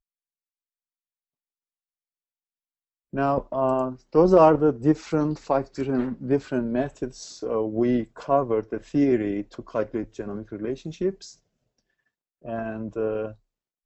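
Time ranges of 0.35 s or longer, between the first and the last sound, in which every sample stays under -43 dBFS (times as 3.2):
11.33–12.44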